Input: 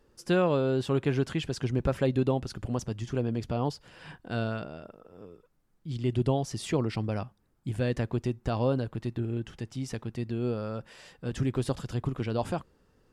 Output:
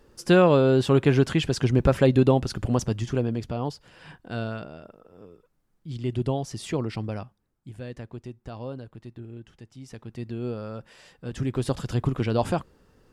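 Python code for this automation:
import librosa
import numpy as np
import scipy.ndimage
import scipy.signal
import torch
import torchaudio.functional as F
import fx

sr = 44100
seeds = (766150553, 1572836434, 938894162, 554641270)

y = fx.gain(x, sr, db=fx.line((2.92, 7.5), (3.56, 0.0), (7.08, 0.0), (7.71, -9.0), (9.79, -9.0), (10.23, -1.0), (11.3, -1.0), (11.91, 6.0)))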